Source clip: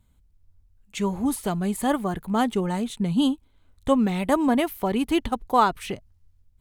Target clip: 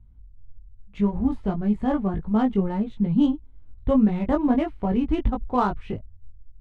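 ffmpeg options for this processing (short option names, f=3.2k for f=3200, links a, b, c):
-af "aemphasis=mode=reproduction:type=riaa,flanger=delay=18.5:depth=2:speed=1.7,adynamicsmooth=sensitivity=3.5:basefreq=3.3k,volume=-1.5dB"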